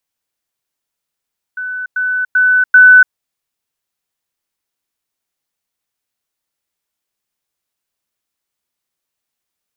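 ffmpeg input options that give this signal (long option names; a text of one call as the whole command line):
ffmpeg -f lavfi -i "aevalsrc='pow(10,(-19.5+6*floor(t/0.39))/20)*sin(2*PI*1500*t)*clip(min(mod(t,0.39),0.29-mod(t,0.39))/0.005,0,1)':duration=1.56:sample_rate=44100" out.wav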